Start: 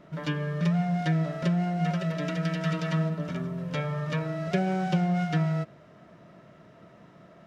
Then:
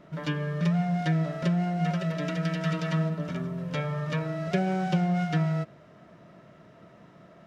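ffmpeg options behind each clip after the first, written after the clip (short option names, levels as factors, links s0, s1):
-af anull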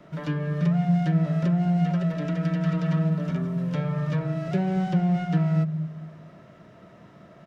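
-filter_complex "[0:a]acrossover=split=250|360|1900[s0][s1][s2][s3];[s0]aecho=1:1:223|446|669|892:0.668|0.227|0.0773|0.0263[s4];[s2]asoftclip=type=tanh:threshold=0.0168[s5];[s3]acompressor=threshold=0.00251:ratio=6[s6];[s4][s1][s5][s6]amix=inputs=4:normalize=0,volume=1.33"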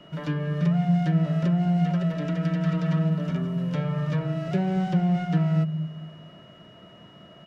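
-af "aeval=exprs='val(0)+0.002*sin(2*PI*2900*n/s)':c=same"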